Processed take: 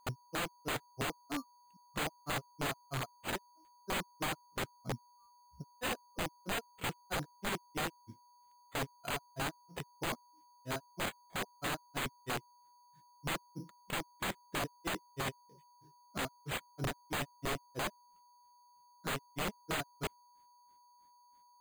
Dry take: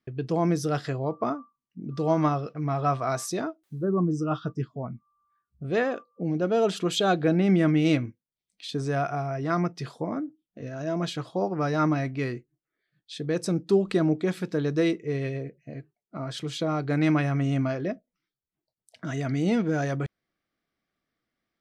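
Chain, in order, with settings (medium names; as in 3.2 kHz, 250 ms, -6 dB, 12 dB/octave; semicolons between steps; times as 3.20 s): compression 6:1, threshold -24 dBFS, peak gain reduction 8 dB; granulator 163 ms, grains 3.1 per s, spray 15 ms, pitch spread up and down by 0 st; integer overflow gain 32 dB; whistle 970 Hz -64 dBFS; careless resampling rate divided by 8×, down none, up hold; trim +2 dB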